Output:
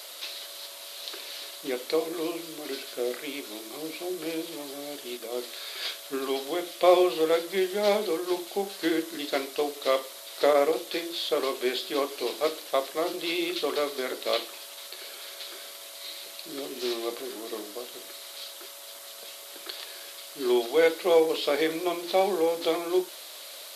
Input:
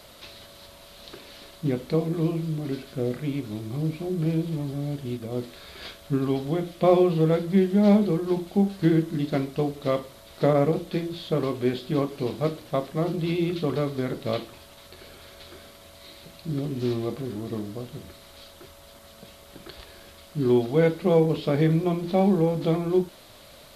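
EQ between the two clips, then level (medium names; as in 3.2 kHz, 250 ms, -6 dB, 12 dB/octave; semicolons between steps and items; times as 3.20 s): high-pass 370 Hz 24 dB/octave; treble shelf 2.3 kHz +11.5 dB; 0.0 dB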